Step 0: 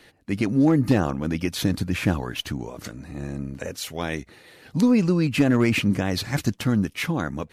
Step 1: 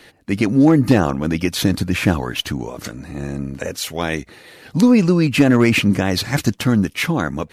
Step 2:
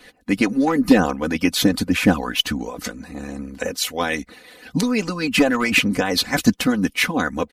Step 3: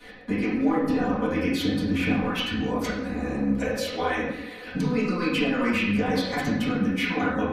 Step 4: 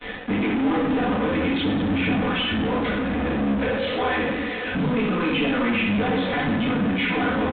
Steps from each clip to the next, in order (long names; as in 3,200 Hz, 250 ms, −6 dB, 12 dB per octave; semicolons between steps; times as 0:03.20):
low-shelf EQ 180 Hz −3 dB; level +7 dB
harmonic and percussive parts rebalanced harmonic −15 dB; comb filter 4 ms, depth 69%; level +1 dB
downward compressor 5 to 1, threshold −28 dBFS, peak gain reduction 18 dB; convolution reverb, pre-delay 3 ms, DRR −12.5 dB; level −7.5 dB
in parallel at −8 dB: fuzz pedal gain 42 dB, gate −48 dBFS; on the sum: downsampling to 8,000 Hz; level −4.5 dB